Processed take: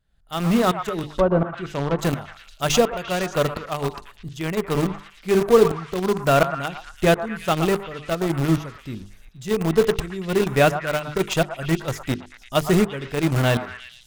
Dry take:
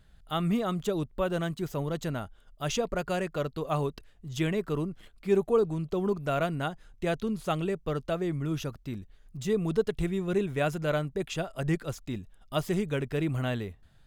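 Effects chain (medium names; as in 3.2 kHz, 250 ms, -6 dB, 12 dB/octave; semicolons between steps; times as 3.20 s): tremolo saw up 1.4 Hz, depth 85%; hum notches 50/100/150/200/250/300/350/400/450 Hz; in parallel at -7.5 dB: bit crusher 5-bit; on the sum: level rider gain up to 7.5 dB; on a send: repeats whose band climbs or falls 115 ms, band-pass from 990 Hz, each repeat 0.7 oct, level -6 dB; 1.12–1.99 s: on the sum: low-pass that closes with the level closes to 1 kHz, closed at -17 dBFS; trim +2.5 dB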